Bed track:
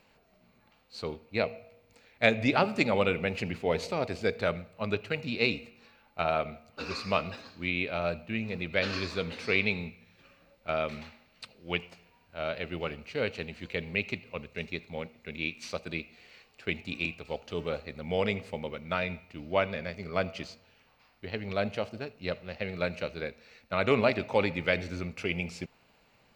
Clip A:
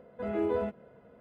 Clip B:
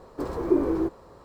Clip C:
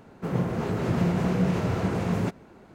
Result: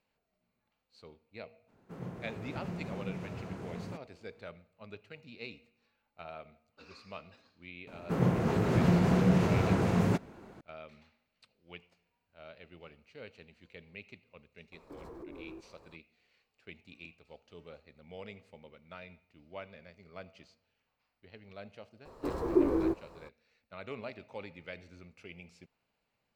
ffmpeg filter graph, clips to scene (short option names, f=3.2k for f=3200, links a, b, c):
-filter_complex "[3:a]asplit=2[a][b];[2:a]asplit=2[c][d];[0:a]volume=-17.5dB[e];[c]acompressor=threshold=-34dB:ratio=6:attack=3.2:release=140:knee=1:detection=peak[f];[a]atrim=end=2.74,asetpts=PTS-STARTPTS,volume=-16dB,afade=t=in:d=0.02,afade=t=out:st=2.72:d=0.02,adelay=1670[g];[b]atrim=end=2.74,asetpts=PTS-STARTPTS,volume=-1dB,afade=t=in:d=0.004:c=hsin,afade=t=out:st=2.736:d=0.004:c=hsin,adelay=7870[h];[f]atrim=end=1.24,asetpts=PTS-STARTPTS,volume=-10.5dB,afade=t=in:d=0.004:c=hsin,afade=t=out:st=1.236:d=0.004:c=hsin,adelay=14720[i];[d]atrim=end=1.24,asetpts=PTS-STARTPTS,volume=-4dB,afade=t=in:d=0.004:c=hsin,afade=t=out:st=1.236:d=0.004:c=hsin,adelay=22050[j];[e][g][h][i][j]amix=inputs=5:normalize=0"